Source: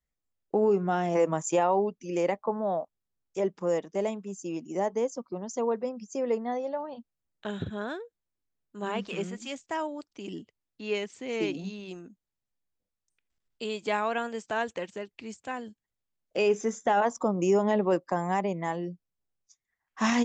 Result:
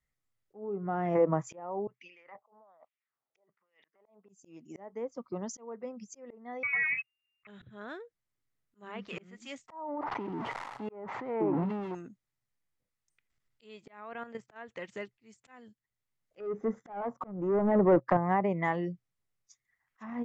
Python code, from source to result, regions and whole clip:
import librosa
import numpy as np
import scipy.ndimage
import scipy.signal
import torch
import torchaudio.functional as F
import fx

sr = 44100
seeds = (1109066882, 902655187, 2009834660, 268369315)

y = fx.chain(x, sr, fx.lowpass(hz=5000.0, slope=24),
    fx.over_compress(threshold_db=-39.0, ratio=-1.0),
    fx.wah_lfo(hz=1.2, low_hz=660.0, high_hz=2700.0, q=2.5), at=(1.87, 4.29))
y = fx.chain(y, sr, fx.leveller(passes=2),
    fx.freq_invert(carrier_hz=2800), at=(6.63, 7.47))
y = fx.chain(y, sr, fx.crossing_spikes(level_db=-24.0),
    fx.lowpass_res(hz=900.0, q=4.7),
    fx.sustainer(db_per_s=32.0), at=(9.68, 11.95))
y = fx.chain(y, sr, fx.high_shelf(hz=3200.0, db=-11.5),
    fx.level_steps(step_db=11), at=(13.85, 14.56))
y = fx.chain(y, sr, fx.highpass(hz=47.0, slope=12),
    fx.peak_eq(hz=2500.0, db=-7.5, octaves=0.28),
    fx.leveller(passes=2), at=(16.4, 18.17))
y = fx.env_lowpass_down(y, sr, base_hz=930.0, full_db=-21.5)
y = fx.graphic_eq_31(y, sr, hz=(125, 1250, 2000), db=(11, 5, 8))
y = fx.auto_swell(y, sr, attack_ms=741.0)